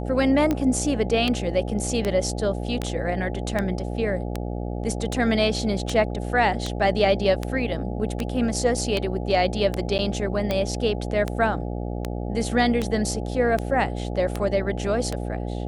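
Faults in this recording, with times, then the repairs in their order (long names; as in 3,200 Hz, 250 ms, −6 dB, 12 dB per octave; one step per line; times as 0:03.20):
mains buzz 60 Hz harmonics 14 −29 dBFS
scratch tick 78 rpm −11 dBFS
0:09.98–0:09.99: drop-out 9.3 ms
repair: click removal
hum removal 60 Hz, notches 14
repair the gap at 0:09.98, 9.3 ms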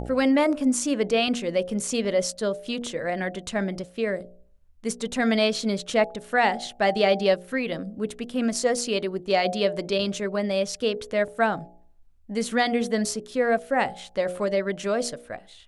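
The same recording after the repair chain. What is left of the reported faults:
none of them is left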